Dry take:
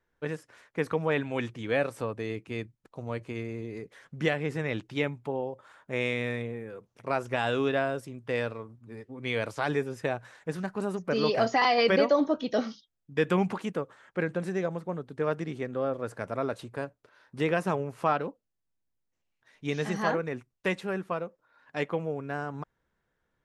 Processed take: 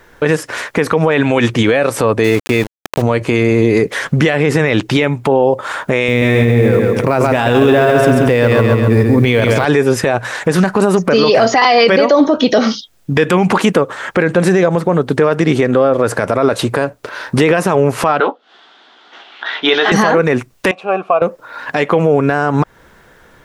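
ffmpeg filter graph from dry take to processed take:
-filter_complex "[0:a]asettb=1/sr,asplit=3[a][b][c];[a]atrim=end=2.244[d];[b]atrim=start=2.24:end=3.02,asetpts=PTS-STARTPTS,afade=t=in:d=0.004:c=qsin,afade=t=out:st=0.776:d=0.004:c=qsin,bandreject=f=3.1k:w=9.1,aeval=exprs='val(0)*gte(abs(val(0)),0.00562)':c=same[e];[c]atrim=start=3.016[f];[d][e]acrossfade=d=0.004:c1=hsin:c2=qsin[g];[g][f]acrossfade=d=0.004:c1=qsin:c2=hsin,asettb=1/sr,asplit=3[h][i][j];[h]atrim=end=6.084[k];[i]atrim=start=6.08:end=9.65,asetpts=PTS-STARTPTS,afade=t=in:d=0.004:c=qsin,afade=t=out:st=3.566:d=0.004:c=qsin,acrusher=bits=8:mode=log:mix=0:aa=0.000001,lowshelf=f=320:g=11.5,aecho=1:1:135|270|405|540|675:0.501|0.21|0.0884|0.0371|0.0156,atrim=end_sample=157437[l];[j]atrim=start=9.646[m];[k][l]acrossfade=d=0.004:c1=hsin:c2=qsin[n];[n][m]acrossfade=d=0.004:c1=qsin:c2=hsin,asettb=1/sr,asplit=3[o][p][q];[o]atrim=end=18.204[r];[p]atrim=start=18.2:end=19.92,asetpts=PTS-STARTPTS,afade=t=in:d=0.004:c=qsin,afade=t=out:st=1.716:d=0.004:c=qsin,acompressor=mode=upward:threshold=-50dB:ratio=2.5:attack=3.2:release=140:knee=2.83:detection=peak,highpass=f=320:w=0.5412,highpass=f=320:w=1.3066,equalizer=f=330:t=q:w=4:g=-4,equalizer=f=520:t=q:w=4:g=-9,equalizer=f=760:t=q:w=4:g=5,equalizer=f=1.4k:t=q:w=4:g=8,equalizer=f=2.4k:t=q:w=4:g=-5,equalizer=f=3.4k:t=q:w=4:g=10,lowpass=f=3.9k:w=0.5412,lowpass=f=3.9k:w=1.3066,asplit=2[s][t];[t]adelay=16,volume=-8dB[u];[s][u]amix=inputs=2:normalize=0,atrim=end_sample=75852[v];[q]atrim=start=19.916[w];[r][v]acrossfade=d=0.004:c1=hsin:c2=qsin[x];[x][w]acrossfade=d=0.004:c1=qsin:c2=hsin,asettb=1/sr,asplit=3[y][z][aa];[y]atrim=end=20.714[ab];[z]atrim=start=20.71:end=21.22,asetpts=PTS-STARTPTS,afade=t=in:d=0.004:c=qsin,afade=t=out:st=0.506:d=0.004:c=qsin,asplit=3[ac][ad][ae];[ac]bandpass=f=730:t=q:w=8,volume=0dB[af];[ad]bandpass=f=1.09k:t=q:w=8,volume=-6dB[ag];[ae]bandpass=f=2.44k:t=q:w=8,volume=-9dB[ah];[af][ag][ah]amix=inputs=3:normalize=0,lowshelf=f=150:g=8.5[ai];[aa]atrim=start=21.216[aj];[ab][ai]acrossfade=d=0.004:c1=hsin:c2=qsin[ak];[ak][aj]acrossfade=d=0.004:c1=qsin:c2=hsin,bass=f=250:g=-4,treble=f=4k:g=0,acompressor=threshold=-44dB:ratio=2,alimiter=level_in=35dB:limit=-1dB:release=50:level=0:latency=1,volume=-1dB"

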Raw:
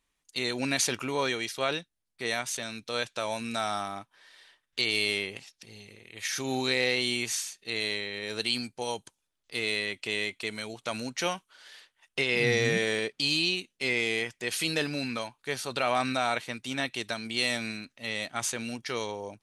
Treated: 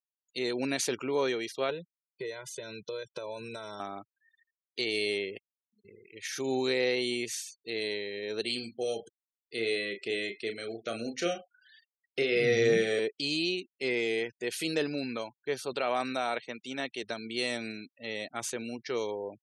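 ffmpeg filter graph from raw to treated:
-filter_complex "[0:a]asettb=1/sr,asplit=3[a][b][c];[a]atrim=end=1.704[d];[b]atrim=start=1.7:end=3.8,asetpts=PTS-STARTPTS,afade=t=in:d=0.004:c=qsin,afade=t=out:st=2.096:d=0.004:c=qsin,equalizer=f=180:w=1.4:g=10,aecho=1:1:2:0.97,atrim=end_sample=92610,acompressor=threshold=-34dB:ratio=5:attack=3.2:release=140:knee=1:detection=peak[e];[c]atrim=start=3.796[f];[d][e]acrossfade=d=0.004:c1=hsin:c2=qsin[g];[g][f]acrossfade=d=0.004:c1=qsin:c2=hsin,asettb=1/sr,asplit=3[h][i][j];[h]atrim=end=5.384[k];[i]atrim=start=5.38:end=5.85,asetpts=PTS-STARTPTS,afade=t=in:d=0.004:c=qsin,afade=t=out:st=0.466:d=0.004:c=qsin,highpass=f=190:w=0.5412,highpass=f=190:w=1.3066,acompressor=threshold=-53dB:ratio=10:attack=3.2:release=140:knee=1:detection=peak[l];[j]atrim=start=5.846[m];[k][l]acrossfade=d=0.004:c1=hsin:c2=qsin[n];[n][m]acrossfade=d=0.004:c1=qsin:c2=hsin,asettb=1/sr,asplit=3[o][p][q];[o]atrim=end=8.414[r];[p]atrim=start=8.41:end=12.99,asetpts=PTS-STARTPTS,afade=t=in:d=0.004:c=qsin,afade=t=out:st=4.576:d=0.004:c=qsin,asuperstop=centerf=960:order=20:qfactor=3,asplit=2[s][t];[t]adelay=35,volume=-6.5dB[u];[s][u]amix=inputs=2:normalize=0,atrim=end_sample=201978,aecho=1:1:97:0.1,atrim=end_sample=201978[v];[q]atrim=start=12.986[w];[r][v]acrossfade=d=0.004:c1=hsin:c2=qsin[x];[x][w]acrossfade=d=0.004:c1=qsin:c2=hsin,asettb=1/sr,asplit=3[y][z][aa];[y]atrim=end=15.734[ab];[z]atrim=start=15.73:end=17.03,asetpts=PTS-STARTPTS,afade=t=in:d=0.004:c=qsin,afade=t=out:st=1.296:d=0.004:c=qsin,highpass=160,equalizer=f=320:w=2:g=-3.5[ac];[aa]atrim=start=17.026[ad];[ab][ac]acrossfade=d=0.004:c1=hsin:c2=qsin[ae];[ae][ad]acrossfade=d=0.004:c1=qsin:c2=hsin,afftfilt=real='re*gte(hypot(re,im),0.00794)':imag='im*gte(hypot(re,im),0.00794)':win_size=1024:overlap=0.75,highpass=100,equalizer=f=400:t=o:w=1.1:g=9.5,volume=-5.5dB"

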